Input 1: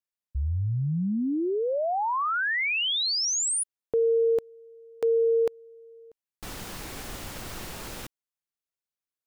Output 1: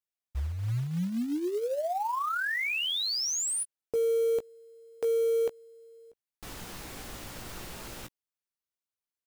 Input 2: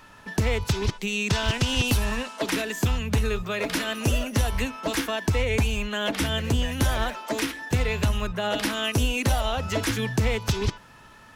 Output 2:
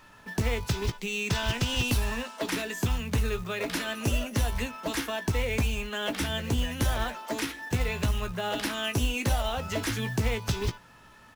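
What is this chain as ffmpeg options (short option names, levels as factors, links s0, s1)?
-filter_complex "[0:a]asplit=2[s0][s1];[s1]adelay=17,volume=0.335[s2];[s0][s2]amix=inputs=2:normalize=0,acrusher=bits=5:mode=log:mix=0:aa=0.000001,volume=0.596"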